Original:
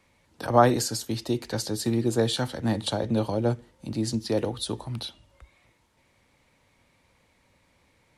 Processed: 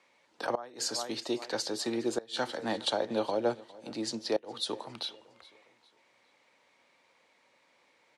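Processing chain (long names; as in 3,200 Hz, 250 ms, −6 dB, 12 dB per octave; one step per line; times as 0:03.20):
band-pass filter 410–6,500 Hz
repeating echo 410 ms, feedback 36%, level −21 dB
gate with flip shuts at −17 dBFS, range −25 dB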